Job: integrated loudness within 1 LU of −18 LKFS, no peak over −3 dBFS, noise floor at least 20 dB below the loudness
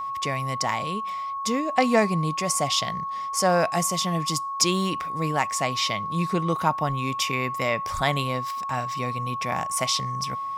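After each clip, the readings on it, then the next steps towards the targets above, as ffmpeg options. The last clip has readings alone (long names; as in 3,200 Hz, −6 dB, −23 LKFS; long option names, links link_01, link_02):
interfering tone 1,100 Hz; level of the tone −28 dBFS; integrated loudness −25.0 LKFS; sample peak −7.0 dBFS; target loudness −18.0 LKFS
→ -af "bandreject=frequency=1100:width=30"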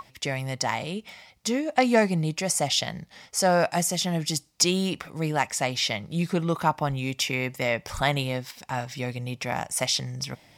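interfering tone none found; integrated loudness −26.5 LKFS; sample peak −7.5 dBFS; target loudness −18.0 LKFS
→ -af "volume=8.5dB,alimiter=limit=-3dB:level=0:latency=1"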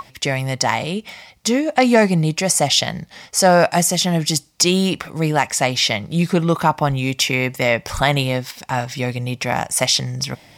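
integrated loudness −18.0 LKFS; sample peak −3.0 dBFS; background noise floor −49 dBFS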